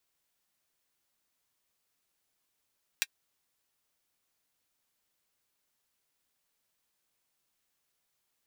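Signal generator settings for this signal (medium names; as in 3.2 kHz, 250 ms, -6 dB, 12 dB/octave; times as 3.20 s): closed hi-hat, high-pass 2 kHz, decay 0.05 s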